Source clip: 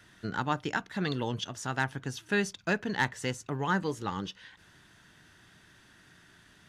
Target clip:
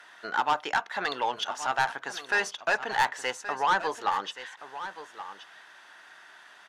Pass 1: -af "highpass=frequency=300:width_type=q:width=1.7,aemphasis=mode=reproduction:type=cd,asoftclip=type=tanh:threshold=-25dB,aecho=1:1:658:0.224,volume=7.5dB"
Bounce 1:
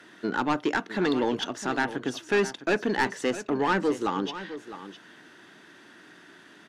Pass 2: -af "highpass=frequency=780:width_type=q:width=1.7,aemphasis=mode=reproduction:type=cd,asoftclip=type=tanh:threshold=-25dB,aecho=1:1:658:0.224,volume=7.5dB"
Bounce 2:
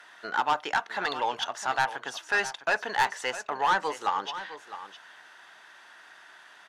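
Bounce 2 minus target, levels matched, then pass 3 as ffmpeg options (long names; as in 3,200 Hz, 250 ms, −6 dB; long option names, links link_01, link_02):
echo 467 ms early
-af "highpass=frequency=780:width_type=q:width=1.7,aemphasis=mode=reproduction:type=cd,asoftclip=type=tanh:threshold=-25dB,aecho=1:1:1125:0.224,volume=7.5dB"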